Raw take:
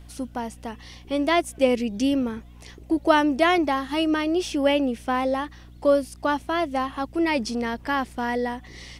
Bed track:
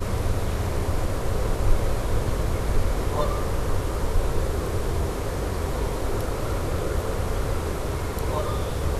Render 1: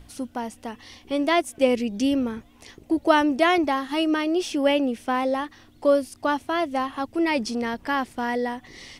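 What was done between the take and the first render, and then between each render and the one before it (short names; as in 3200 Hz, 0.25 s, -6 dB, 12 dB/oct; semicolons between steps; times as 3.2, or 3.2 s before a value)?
de-hum 60 Hz, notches 3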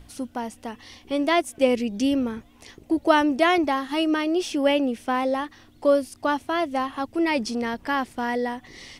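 nothing audible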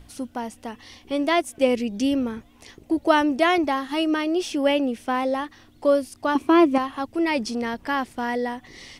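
6.35–6.78 small resonant body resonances 330/1100/2400 Hz, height 14 dB, ringing for 20 ms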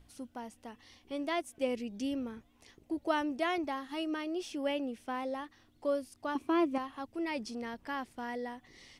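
gain -13 dB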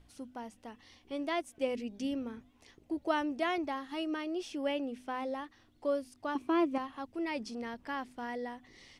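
high shelf 9900 Hz -7.5 dB; de-hum 50.25 Hz, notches 5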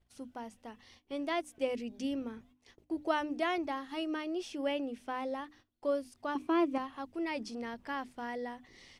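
gate -59 dBFS, range -18 dB; notches 50/100/150/200/250/300 Hz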